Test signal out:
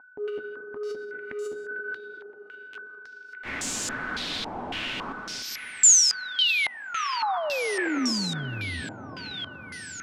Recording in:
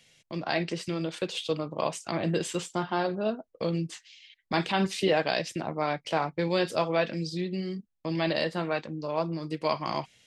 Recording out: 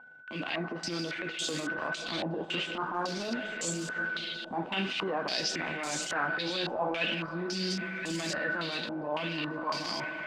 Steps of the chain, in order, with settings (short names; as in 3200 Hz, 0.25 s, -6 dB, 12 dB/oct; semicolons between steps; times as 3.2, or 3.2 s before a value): block floating point 5-bit; recorder AGC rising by 10 dB/s; whine 1500 Hz -42 dBFS; in parallel at -4 dB: soft clip -21 dBFS; on the sum: digital reverb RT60 4.6 s, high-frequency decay 0.45×, pre-delay 0.1 s, DRR 13 dB; compressor 2:1, threshold -29 dBFS; flange 0.97 Hz, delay 3.8 ms, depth 8.6 ms, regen -39%; tilt +2 dB/oct; transient shaper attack -12 dB, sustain +6 dB; bell 260 Hz +9.5 dB 0.78 oct; on a send: thin delay 1.018 s, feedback 62%, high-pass 1900 Hz, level -4 dB; on the sum: stepped low-pass 3.6 Hz 830–7200 Hz; gain -2.5 dB